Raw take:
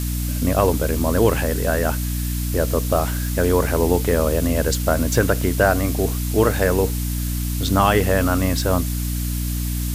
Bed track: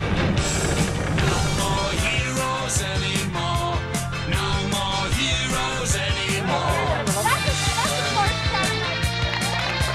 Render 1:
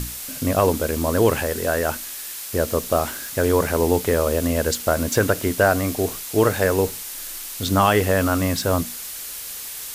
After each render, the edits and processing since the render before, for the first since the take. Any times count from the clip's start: hum notches 60/120/180/240/300 Hz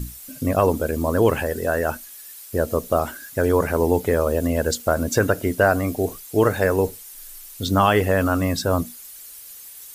noise reduction 13 dB, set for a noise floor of -33 dBFS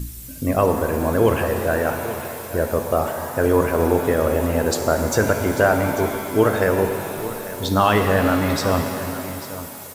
delay 844 ms -14 dB; pitch-shifted reverb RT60 2.7 s, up +7 st, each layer -8 dB, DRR 5 dB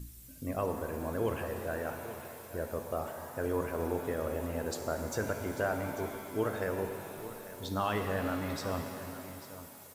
trim -15.5 dB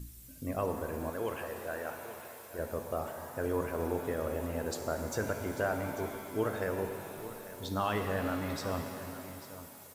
1.10–2.59 s: bass shelf 290 Hz -10.5 dB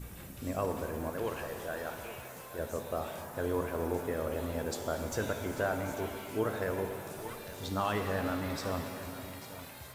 add bed track -28 dB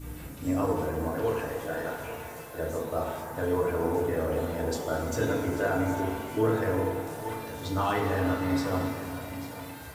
FDN reverb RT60 0.79 s, low-frequency decay 1.2×, high-frequency decay 0.35×, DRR -2.5 dB

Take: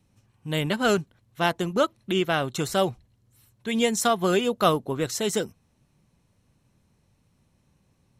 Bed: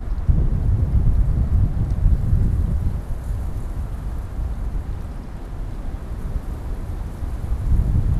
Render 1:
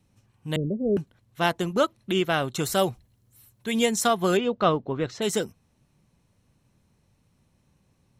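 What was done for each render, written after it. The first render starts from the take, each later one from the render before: 0.56–0.97 s: steep low-pass 540 Hz 48 dB/octave; 2.63–3.86 s: treble shelf 11 kHz +11.5 dB; 4.37–5.22 s: distance through air 200 m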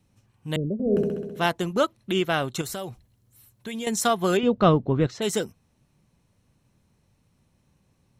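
0.73–1.46 s: flutter echo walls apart 11.2 m, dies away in 1.3 s; 2.61–3.87 s: compression 5:1, threshold -30 dBFS; 4.43–5.07 s: bass shelf 300 Hz +11.5 dB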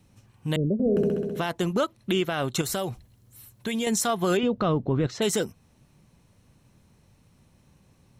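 in parallel at +0.5 dB: compression, threshold -33 dBFS, peak gain reduction 18.5 dB; on the sum: peak limiter -15.5 dBFS, peak gain reduction 10 dB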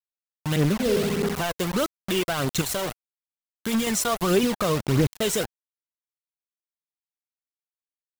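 bit crusher 5-bit; phaser 1.6 Hz, delay 2.2 ms, feedback 43%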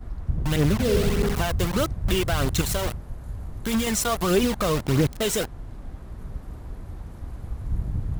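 add bed -9 dB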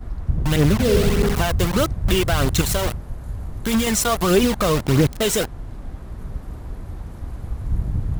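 trim +4.5 dB

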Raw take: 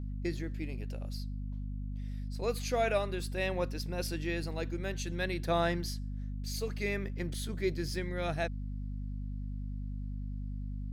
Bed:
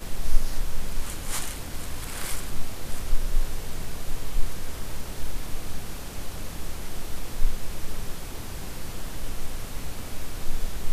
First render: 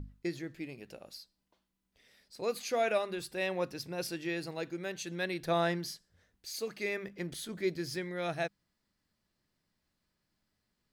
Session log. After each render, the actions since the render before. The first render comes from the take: hum notches 50/100/150/200/250 Hz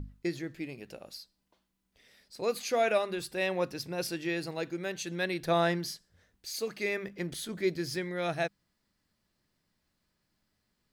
trim +3 dB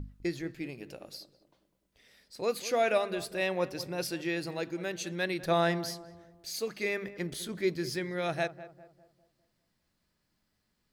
filtered feedback delay 201 ms, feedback 46%, low-pass 1.2 kHz, level -14 dB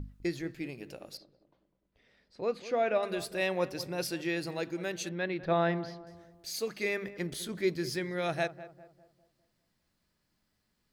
1.17–3.03 s: tape spacing loss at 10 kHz 24 dB; 5.09–6.07 s: distance through air 290 m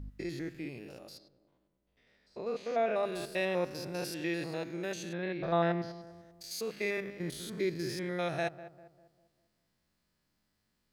spectrogram pixelated in time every 100 ms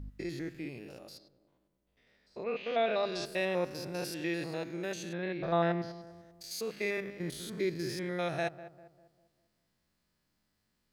2.43–3.24 s: resonant low-pass 2.2 kHz -> 5.8 kHz

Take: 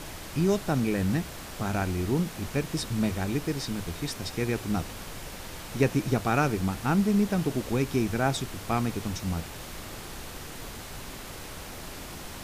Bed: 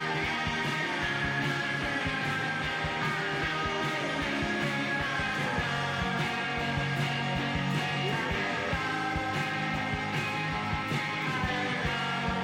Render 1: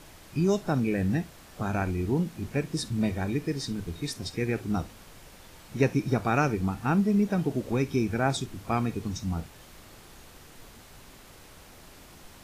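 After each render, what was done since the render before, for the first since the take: noise print and reduce 10 dB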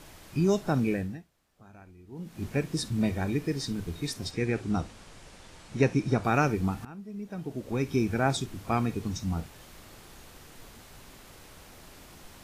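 0.91–2.43 s: dip -23 dB, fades 0.39 s quadratic; 4.31–6.24 s: low-pass 9.6 kHz 24 dB/octave; 6.85–7.96 s: fade in quadratic, from -20.5 dB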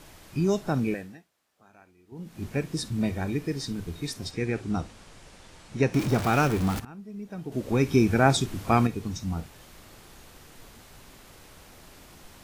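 0.94–2.12 s: high-pass 460 Hz 6 dB/octave; 5.94–6.80 s: jump at every zero crossing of -28 dBFS; 7.52–8.87 s: gain +6 dB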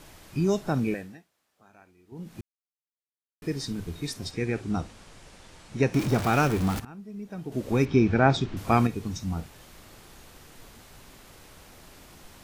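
2.41–3.42 s: mute; 7.85–8.57 s: Bessel low-pass 3.7 kHz, order 4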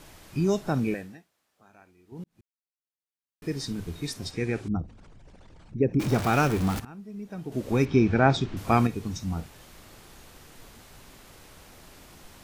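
2.24–3.61 s: fade in; 4.68–6.00 s: resonances exaggerated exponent 2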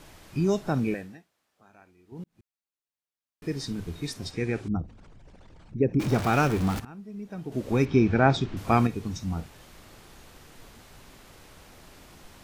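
treble shelf 7 kHz -4 dB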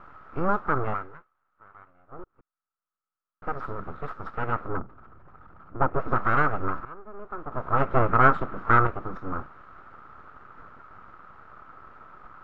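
full-wave rectifier; resonant low-pass 1.3 kHz, resonance Q 9.7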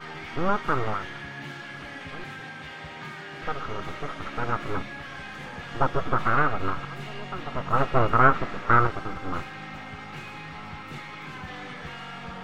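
add bed -8.5 dB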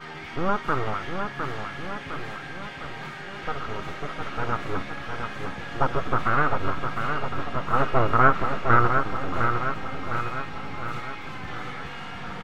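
feedback delay 708 ms, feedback 58%, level -6 dB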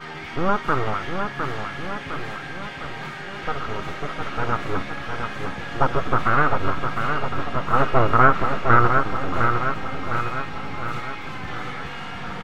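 trim +3.5 dB; peak limiter -3 dBFS, peak gain reduction 2 dB

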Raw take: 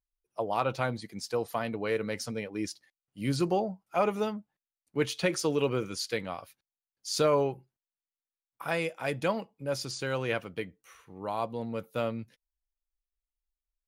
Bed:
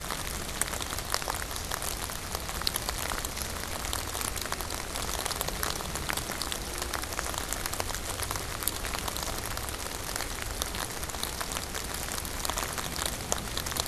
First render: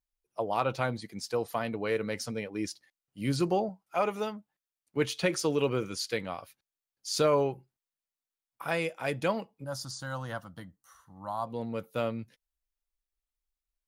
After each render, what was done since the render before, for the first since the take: 3.69–4.97 s: bass shelf 370 Hz -6.5 dB; 9.64–11.47 s: static phaser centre 1 kHz, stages 4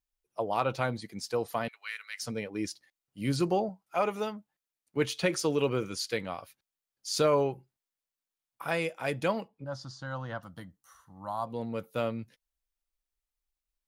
1.68–2.23 s: high-pass 1.5 kHz 24 dB/octave; 9.48–10.43 s: distance through air 150 m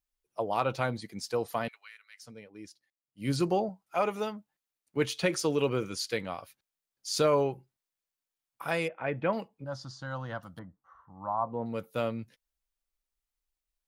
1.75–3.30 s: dip -13 dB, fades 0.14 s; 8.88–9.33 s: low-pass 2.4 kHz 24 dB/octave; 10.59–11.66 s: resonant low-pass 1.1 kHz, resonance Q 1.6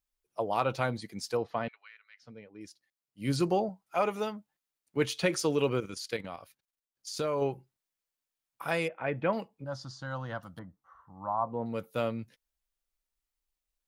1.37–2.61 s: distance through air 230 m; 5.80–7.42 s: level held to a coarse grid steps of 10 dB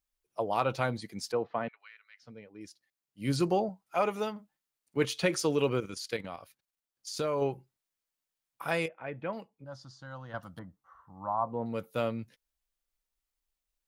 1.32–1.80 s: band-pass 130–2500 Hz; 4.31–5.05 s: doubling 50 ms -11.5 dB; 8.86–10.34 s: gain -7 dB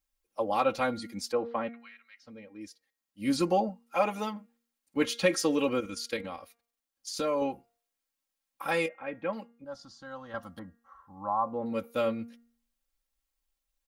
comb 3.7 ms, depth 78%; de-hum 234.4 Hz, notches 12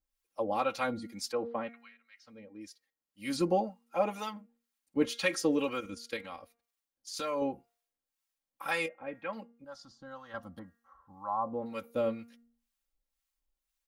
harmonic tremolo 2 Hz, depth 70%, crossover 800 Hz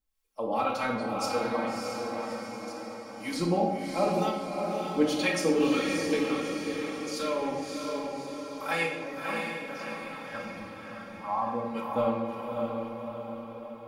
on a send: echo that smears into a reverb 621 ms, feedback 54%, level -3.5 dB; on the sum: simulated room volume 580 m³, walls mixed, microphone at 1.5 m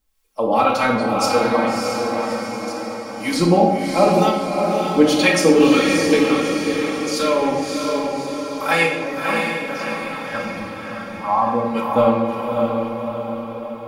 trim +12 dB; peak limiter -2 dBFS, peak gain reduction 1.5 dB

